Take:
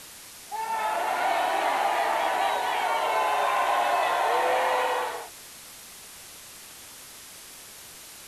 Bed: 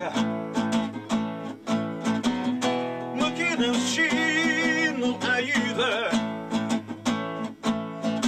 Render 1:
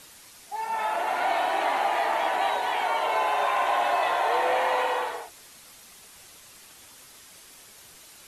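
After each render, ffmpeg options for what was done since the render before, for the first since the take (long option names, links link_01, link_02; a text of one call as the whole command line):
ffmpeg -i in.wav -af "afftdn=noise_reduction=6:noise_floor=-45" out.wav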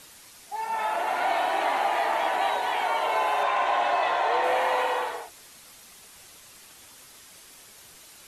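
ffmpeg -i in.wav -filter_complex "[0:a]asettb=1/sr,asplit=3[link_01][link_02][link_03];[link_01]atrim=end=3.434[link_04];[link_02]atrim=start=3.43:end=4.44,asetpts=PTS-STARTPTS,afade=type=in:duration=0.004:curve=qsin,afade=type=out:start_time=1.006:duration=0.004:curve=qsin,lowpass=6800[link_05];[link_03]atrim=start=4.436[link_06];[link_04][link_05]acrossfade=duration=0.004:curve1=hsin:curve2=qsin[link_07];[link_07][link_06]acrossfade=duration=0.004:curve1=qsin:curve2=hsin" out.wav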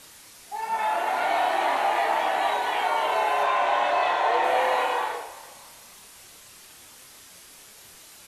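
ffmpeg -i in.wav -filter_complex "[0:a]asplit=2[link_01][link_02];[link_02]adelay=29,volume=-5dB[link_03];[link_01][link_03]amix=inputs=2:normalize=0,asplit=4[link_04][link_05][link_06][link_07];[link_05]adelay=334,afreqshift=31,volume=-19dB[link_08];[link_06]adelay=668,afreqshift=62,volume=-27.6dB[link_09];[link_07]adelay=1002,afreqshift=93,volume=-36.3dB[link_10];[link_04][link_08][link_09][link_10]amix=inputs=4:normalize=0" out.wav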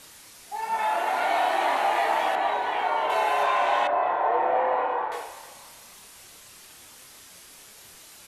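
ffmpeg -i in.wav -filter_complex "[0:a]asettb=1/sr,asplit=3[link_01][link_02][link_03];[link_01]atrim=end=0.844[link_04];[link_02]atrim=start=0.84:end=1.83,asetpts=PTS-STARTPTS,afade=type=in:duration=0.004:curve=qsin,afade=type=out:start_time=0.986:duration=0.004:curve=qsin,highpass=140[link_05];[link_03]atrim=start=1.826[link_06];[link_04][link_05]acrossfade=duration=0.004:curve1=hsin:curve2=qsin[link_07];[link_07][link_06]acrossfade=duration=0.004:curve1=qsin:curve2=hsin,asettb=1/sr,asplit=3[link_08][link_09][link_10];[link_08]atrim=end=2.354[link_11];[link_09]atrim=start=2.35:end=3.1,asetpts=PTS-STARTPTS,afade=type=in:duration=0.004:curve=qsin,afade=type=out:start_time=0.746:duration=0.004:curve=qsin,lowpass=frequency=2200:poles=1[link_12];[link_10]atrim=start=3.096[link_13];[link_11][link_12]acrossfade=duration=0.004:curve1=hsin:curve2=qsin[link_14];[link_14][link_13]acrossfade=duration=0.004:curve1=qsin:curve2=hsin,asettb=1/sr,asplit=3[link_15][link_16][link_17];[link_15]atrim=end=3.874[link_18];[link_16]atrim=start=3.87:end=5.12,asetpts=PTS-STARTPTS,afade=type=in:duration=0.004:curve=qsin,afade=type=out:start_time=1.246:duration=0.004:curve=qsin,lowpass=1300[link_19];[link_17]atrim=start=5.116[link_20];[link_18][link_19]acrossfade=duration=0.004:curve1=hsin:curve2=qsin[link_21];[link_21][link_20]acrossfade=duration=0.004:curve1=qsin:curve2=hsin" out.wav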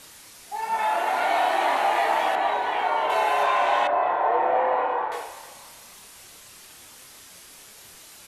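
ffmpeg -i in.wav -af "volume=1.5dB" out.wav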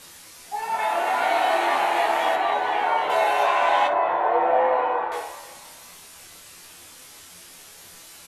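ffmpeg -i in.wav -filter_complex "[0:a]asplit=2[link_01][link_02];[link_02]adelay=23,volume=-11dB[link_03];[link_01][link_03]amix=inputs=2:normalize=0,asplit=2[link_04][link_05];[link_05]aecho=0:1:12|61:0.562|0.178[link_06];[link_04][link_06]amix=inputs=2:normalize=0" out.wav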